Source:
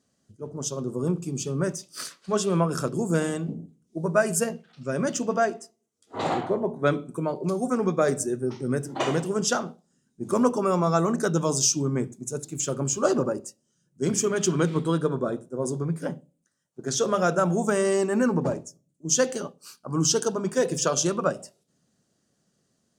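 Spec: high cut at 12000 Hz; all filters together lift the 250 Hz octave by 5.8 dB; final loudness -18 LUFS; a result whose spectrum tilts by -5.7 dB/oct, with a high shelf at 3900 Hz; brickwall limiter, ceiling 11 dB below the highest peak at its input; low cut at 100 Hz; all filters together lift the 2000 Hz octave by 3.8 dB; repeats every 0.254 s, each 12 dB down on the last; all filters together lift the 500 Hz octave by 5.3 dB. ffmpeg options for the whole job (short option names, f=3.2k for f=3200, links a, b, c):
-af "highpass=100,lowpass=12k,equalizer=f=250:t=o:g=6.5,equalizer=f=500:t=o:g=4.5,equalizer=f=2k:t=o:g=6.5,highshelf=f=3.9k:g=-6.5,alimiter=limit=-13.5dB:level=0:latency=1,aecho=1:1:254|508|762:0.251|0.0628|0.0157,volume=6.5dB"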